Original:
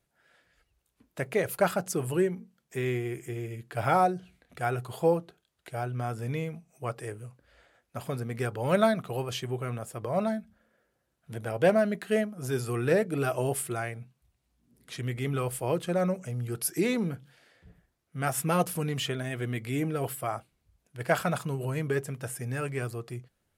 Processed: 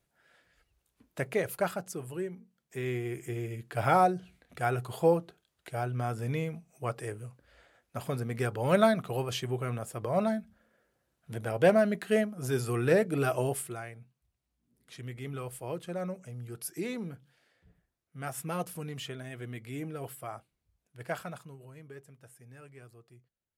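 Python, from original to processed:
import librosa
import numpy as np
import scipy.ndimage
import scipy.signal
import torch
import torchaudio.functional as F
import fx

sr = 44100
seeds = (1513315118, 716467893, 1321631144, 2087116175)

y = fx.gain(x, sr, db=fx.line((1.2, -0.5), (2.14, -10.5), (3.29, 0.0), (13.38, 0.0), (13.84, -8.5), (21.05, -8.5), (21.68, -19.0)))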